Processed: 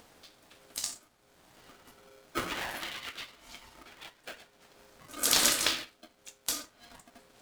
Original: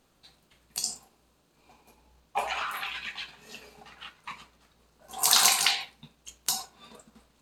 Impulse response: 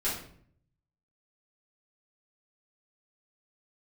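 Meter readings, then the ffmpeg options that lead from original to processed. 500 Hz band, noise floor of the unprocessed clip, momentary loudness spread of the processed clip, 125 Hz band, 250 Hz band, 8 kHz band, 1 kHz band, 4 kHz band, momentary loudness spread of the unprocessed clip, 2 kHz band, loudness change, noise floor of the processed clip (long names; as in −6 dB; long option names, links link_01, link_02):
+1.0 dB, −67 dBFS, 25 LU, +3.0 dB, +8.5 dB, −4.0 dB, −7.5 dB, −4.0 dB, 24 LU, −3.0 dB, −4.0 dB, −66 dBFS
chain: -af "acompressor=mode=upward:threshold=-43dB:ratio=2.5,aeval=exprs='val(0)*sgn(sin(2*PI*470*n/s))':channel_layout=same,volume=-4dB"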